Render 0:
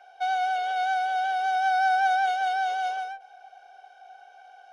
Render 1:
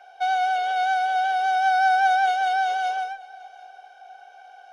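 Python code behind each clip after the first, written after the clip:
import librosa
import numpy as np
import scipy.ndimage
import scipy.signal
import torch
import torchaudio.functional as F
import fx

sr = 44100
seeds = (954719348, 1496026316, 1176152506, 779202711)

y = x + 10.0 ** (-22.5 / 20.0) * np.pad(x, (int(740 * sr / 1000.0), 0))[:len(x)]
y = y * librosa.db_to_amplitude(3.5)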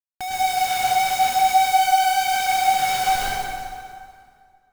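y = fx.schmitt(x, sr, flips_db=-31.5)
y = fx.rev_plate(y, sr, seeds[0], rt60_s=2.2, hf_ratio=0.75, predelay_ms=90, drr_db=-7.5)
y = y * librosa.db_to_amplitude(-4.5)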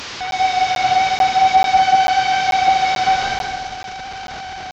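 y = fx.delta_mod(x, sr, bps=32000, step_db=-28.0)
y = scipy.signal.sosfilt(scipy.signal.butter(2, 47.0, 'highpass', fs=sr, output='sos'), y)
y = fx.buffer_crackle(y, sr, first_s=0.31, period_s=0.44, block=512, kind='zero')
y = y * librosa.db_to_amplitude(4.5)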